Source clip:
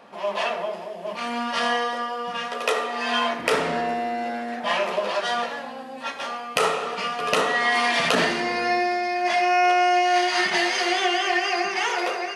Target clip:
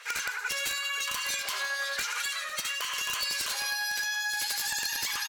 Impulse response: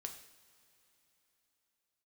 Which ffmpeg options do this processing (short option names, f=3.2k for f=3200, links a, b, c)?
-filter_complex "[0:a]highpass=f=890:p=1,acompressor=threshold=-32dB:ratio=12,acrossover=split=1200[a][b];[a]aeval=exprs='val(0)*(1-0.5/2+0.5/2*cos(2*PI*4.7*n/s))':c=same[c];[b]aeval=exprs='val(0)*(1-0.5/2-0.5/2*cos(2*PI*4.7*n/s))':c=same[d];[c][d]amix=inputs=2:normalize=0,aresample=16000,aeval=exprs='(mod(25.1*val(0)+1,2)-1)/25.1':c=same,aresample=44100,aecho=1:1:1176:0.178,asplit=2[e][f];[1:a]atrim=start_sample=2205[g];[f][g]afir=irnorm=-1:irlink=0,volume=-6.5dB[h];[e][h]amix=inputs=2:normalize=0,asetrate=103194,aresample=44100,volume=4dB"